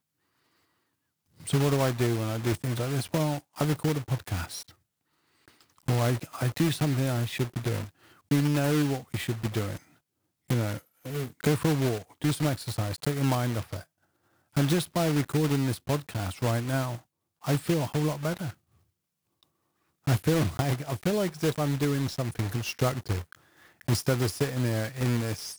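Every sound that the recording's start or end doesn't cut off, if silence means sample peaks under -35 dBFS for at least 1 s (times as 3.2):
1.47–4.61
5.88–18.5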